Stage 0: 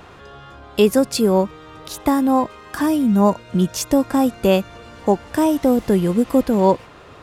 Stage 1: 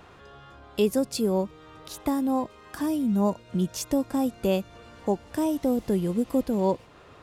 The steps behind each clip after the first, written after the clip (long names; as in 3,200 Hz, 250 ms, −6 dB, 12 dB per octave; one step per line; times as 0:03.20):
dynamic equaliser 1,500 Hz, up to −6 dB, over −34 dBFS, Q 0.84
level −8 dB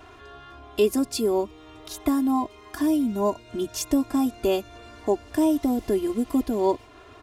comb filter 2.9 ms, depth 93%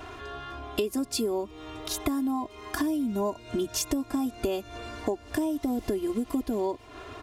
downward compressor 10 to 1, threshold −31 dBFS, peak gain reduction 16 dB
level +5.5 dB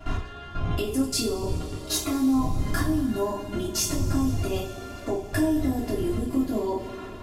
wind on the microphone 100 Hz −32 dBFS
output level in coarse steps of 17 dB
coupled-rooms reverb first 0.36 s, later 4.6 s, from −21 dB, DRR −6.5 dB
level +2.5 dB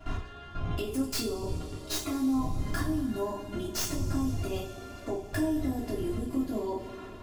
stylus tracing distortion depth 0.067 ms
level −5.5 dB